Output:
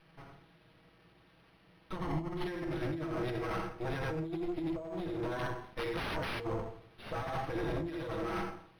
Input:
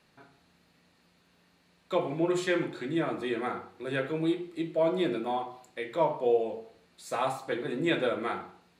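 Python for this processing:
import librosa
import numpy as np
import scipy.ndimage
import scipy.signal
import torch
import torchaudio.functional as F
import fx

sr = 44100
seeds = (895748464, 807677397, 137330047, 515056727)

y = fx.lower_of_two(x, sr, delay_ms=6.2)
y = y + 10.0 ** (-4.5 / 20.0) * np.pad(y, (int(83 * sr / 1000.0), 0))[:len(y)]
y = fx.overflow_wrap(y, sr, gain_db=27.0, at=(5.39, 6.4))
y = fx.over_compress(y, sr, threshold_db=-35.0, ratio=-1.0)
y = fx.low_shelf(y, sr, hz=180.0, db=7.5)
y = fx.rev_fdn(y, sr, rt60_s=0.52, lf_ratio=1.0, hf_ratio=0.85, size_ms=51.0, drr_db=12.5)
y = 10.0 ** (-27.5 / 20.0) * np.tanh(y / 10.0 ** (-27.5 / 20.0))
y = fx.comb(y, sr, ms=1.0, depth=0.58, at=(1.96, 2.46))
y = np.interp(np.arange(len(y)), np.arange(len(y))[::6], y[::6])
y = y * librosa.db_to_amplitude(-1.5)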